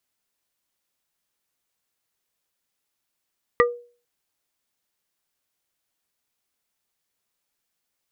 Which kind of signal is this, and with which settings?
struck wood plate, lowest mode 481 Hz, modes 3, decay 0.40 s, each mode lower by 0 dB, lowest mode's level −12.5 dB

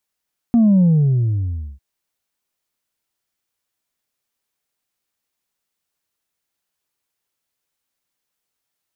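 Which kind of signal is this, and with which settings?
bass drop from 240 Hz, over 1.25 s, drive 1.5 dB, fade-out 0.98 s, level −10 dB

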